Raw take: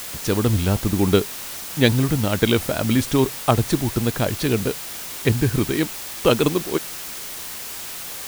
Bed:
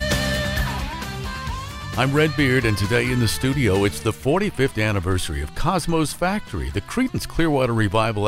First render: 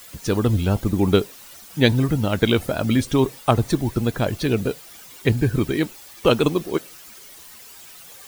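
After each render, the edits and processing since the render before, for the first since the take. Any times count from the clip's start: noise reduction 13 dB, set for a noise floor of -33 dBFS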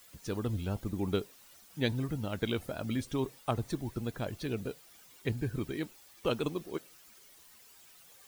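trim -14.5 dB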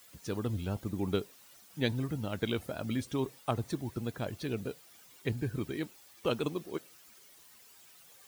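high-pass 63 Hz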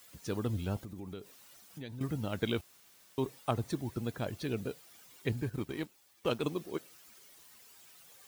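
0.84–2.01 s: compression 4:1, threshold -42 dBFS; 2.61–3.18 s: room tone; 5.42–6.43 s: companding laws mixed up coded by A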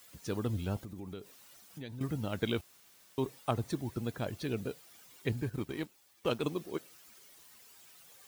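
no audible change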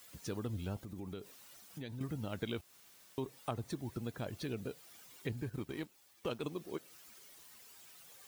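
compression 2:1, threshold -40 dBFS, peak gain reduction 8 dB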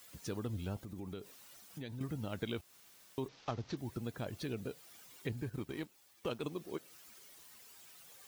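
3.28–3.77 s: CVSD coder 32 kbps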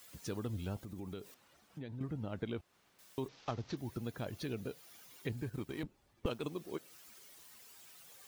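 1.34–2.99 s: low-pass 1.5 kHz 6 dB/octave; 3.71–5.30 s: band-stop 7.9 kHz, Q 7.9; 5.83–6.26 s: tilt EQ -4.5 dB/octave

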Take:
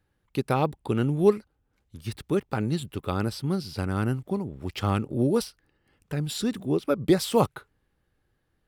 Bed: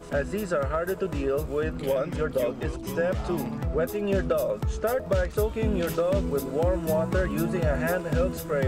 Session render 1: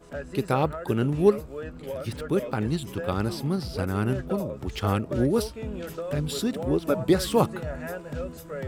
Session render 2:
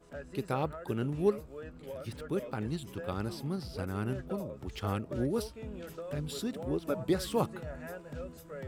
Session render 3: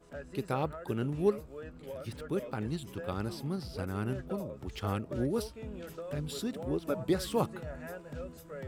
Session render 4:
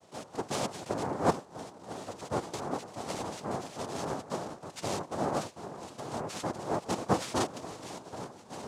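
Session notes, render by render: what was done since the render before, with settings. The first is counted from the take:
add bed -8.5 dB
trim -8.5 dB
no audible change
noise-vocoded speech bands 2

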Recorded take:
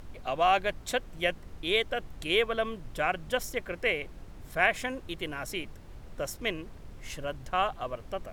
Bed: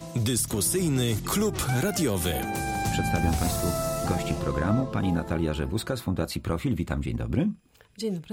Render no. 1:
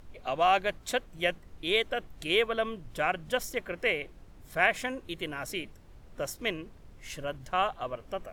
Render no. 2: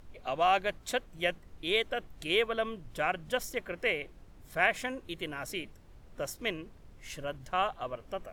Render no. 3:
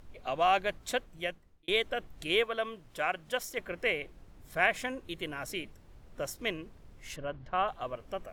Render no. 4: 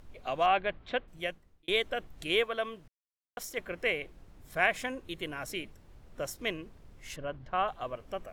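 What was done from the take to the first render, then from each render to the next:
noise print and reduce 6 dB
trim -2 dB
0.97–1.68 s: fade out linear; 2.43–3.58 s: bass shelf 240 Hz -11 dB; 7.16–7.68 s: FFT filter 1.2 kHz 0 dB, 4.4 kHz -7 dB, 9.1 kHz -25 dB
0.46–1.08 s: low-pass 3.4 kHz 24 dB/octave; 2.88–3.37 s: mute

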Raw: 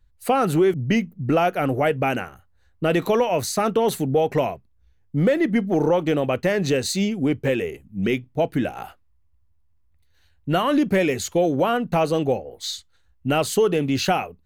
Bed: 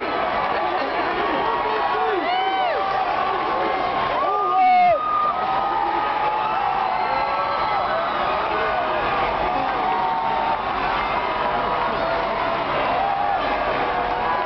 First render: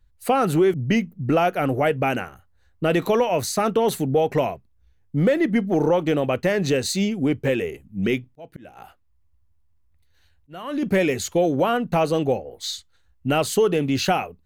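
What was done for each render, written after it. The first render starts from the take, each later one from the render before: 8.26–10.83 s: slow attack 674 ms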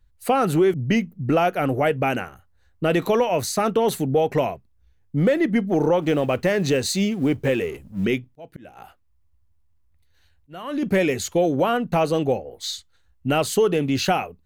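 6.02–8.05 s: companding laws mixed up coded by mu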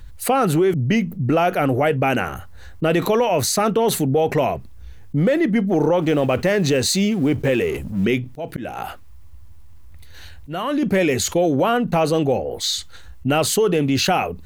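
level flattener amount 50%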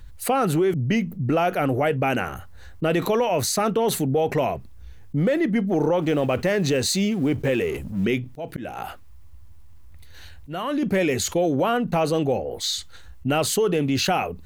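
trim -3.5 dB

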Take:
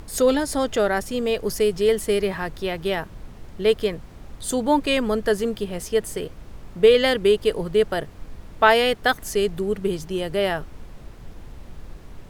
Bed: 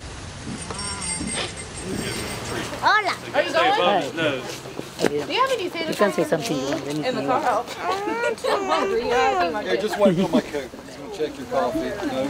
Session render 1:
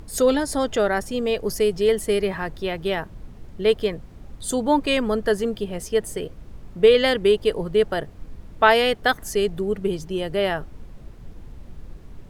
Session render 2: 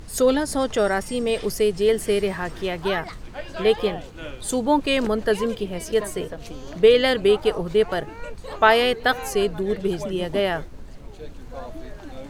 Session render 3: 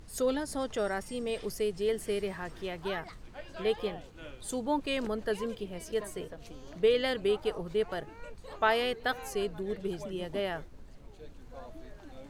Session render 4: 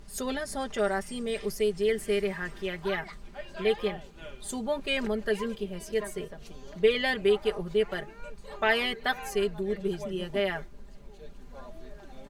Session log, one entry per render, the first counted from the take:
noise reduction 6 dB, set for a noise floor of -43 dBFS
add bed -14.5 dB
trim -11 dB
comb 5 ms, depth 77%; dynamic bell 2 kHz, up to +6 dB, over -48 dBFS, Q 1.8

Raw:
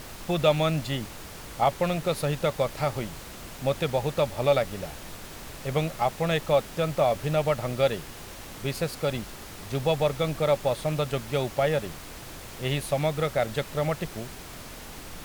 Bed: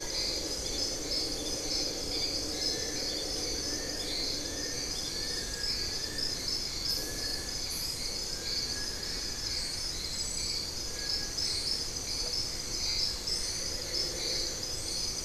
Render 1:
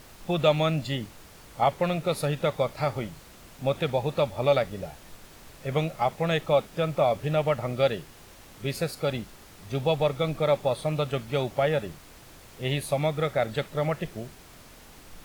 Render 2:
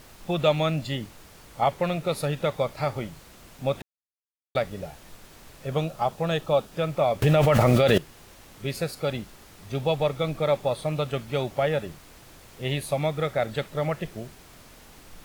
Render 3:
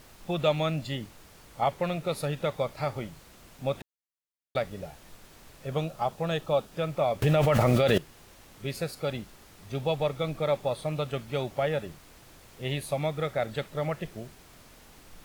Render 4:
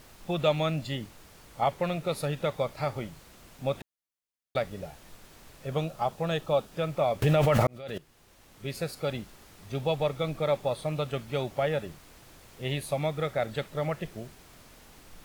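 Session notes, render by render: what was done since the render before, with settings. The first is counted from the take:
noise print and reduce 8 dB
3.82–4.55 s: mute; 5.66–6.72 s: peaking EQ 2.1 kHz -10.5 dB 0.28 oct; 7.22–7.98 s: level flattener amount 100%
trim -3.5 dB
7.67–8.91 s: fade in

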